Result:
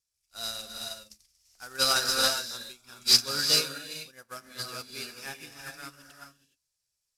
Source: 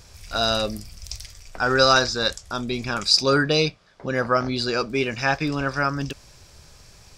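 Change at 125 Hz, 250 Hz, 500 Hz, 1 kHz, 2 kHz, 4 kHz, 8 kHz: −19.0, −18.5, −16.0, −13.0, −10.5, −2.5, +2.0 decibels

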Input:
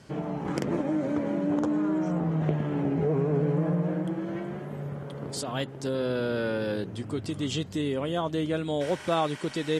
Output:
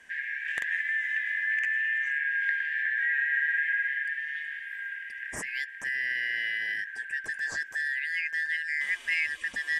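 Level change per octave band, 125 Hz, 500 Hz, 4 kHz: below −30 dB, −29.5 dB, −3.0 dB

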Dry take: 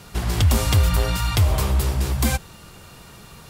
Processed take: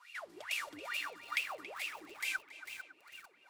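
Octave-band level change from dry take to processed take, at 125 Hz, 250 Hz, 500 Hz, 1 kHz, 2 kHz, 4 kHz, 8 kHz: below −40 dB, −29.0 dB, −21.0 dB, −15.5 dB, −5.5 dB, −14.0 dB, −20.0 dB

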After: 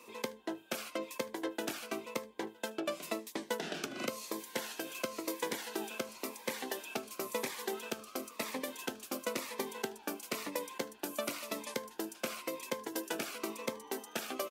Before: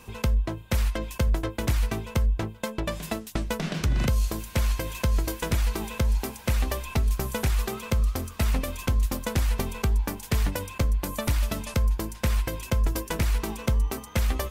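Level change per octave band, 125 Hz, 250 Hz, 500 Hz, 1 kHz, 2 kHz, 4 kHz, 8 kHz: −32.0, −9.5, −4.5, −6.5, −6.5, −5.5, −6.0 decibels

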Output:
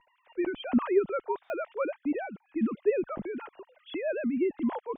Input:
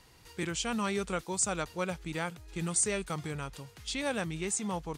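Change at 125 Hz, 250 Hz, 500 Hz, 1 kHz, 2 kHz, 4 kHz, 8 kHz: −10.5 dB, +6.0 dB, +7.5 dB, 0.0 dB, −3.5 dB, can't be measured, below −40 dB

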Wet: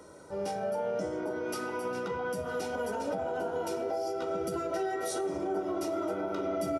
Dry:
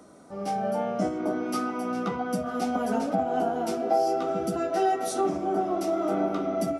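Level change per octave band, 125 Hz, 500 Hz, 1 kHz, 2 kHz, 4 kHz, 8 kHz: −7.5, −4.0, −9.0, −1.0, −3.5, −3.0 decibels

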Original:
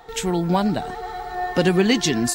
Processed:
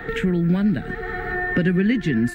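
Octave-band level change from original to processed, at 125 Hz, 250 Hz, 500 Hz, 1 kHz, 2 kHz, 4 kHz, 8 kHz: +3.5 dB, +1.5 dB, −4.0 dB, −8.5 dB, +3.5 dB, −11.5 dB, below −20 dB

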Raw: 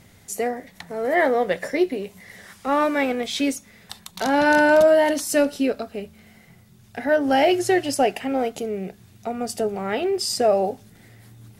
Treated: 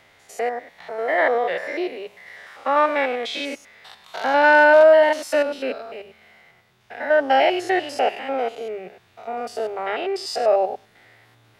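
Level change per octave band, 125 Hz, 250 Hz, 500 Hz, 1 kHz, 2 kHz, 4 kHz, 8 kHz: below −10 dB, −7.5 dB, +1.5 dB, +3.0 dB, +4.0 dB, −0.5 dB, can't be measured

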